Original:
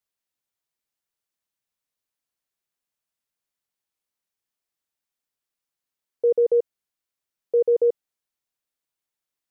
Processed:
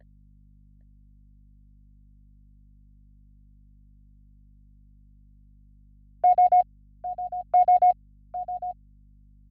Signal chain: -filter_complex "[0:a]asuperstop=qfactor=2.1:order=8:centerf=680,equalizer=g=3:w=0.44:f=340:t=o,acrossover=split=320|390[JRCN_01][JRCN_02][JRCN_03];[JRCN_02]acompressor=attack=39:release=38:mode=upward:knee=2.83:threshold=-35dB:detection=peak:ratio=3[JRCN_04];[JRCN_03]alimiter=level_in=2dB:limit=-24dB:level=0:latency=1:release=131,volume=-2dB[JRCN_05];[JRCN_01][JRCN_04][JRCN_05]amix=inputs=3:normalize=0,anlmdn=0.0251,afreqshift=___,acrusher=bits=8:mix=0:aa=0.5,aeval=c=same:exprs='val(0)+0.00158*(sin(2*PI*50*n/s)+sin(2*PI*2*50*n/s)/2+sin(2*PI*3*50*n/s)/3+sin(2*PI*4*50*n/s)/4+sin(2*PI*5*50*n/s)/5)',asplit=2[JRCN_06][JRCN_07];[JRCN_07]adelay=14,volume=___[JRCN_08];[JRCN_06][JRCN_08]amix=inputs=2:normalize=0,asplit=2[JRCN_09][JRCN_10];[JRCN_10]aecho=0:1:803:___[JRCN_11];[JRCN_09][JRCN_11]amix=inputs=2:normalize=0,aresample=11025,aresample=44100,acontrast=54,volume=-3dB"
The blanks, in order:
250, -12dB, 0.188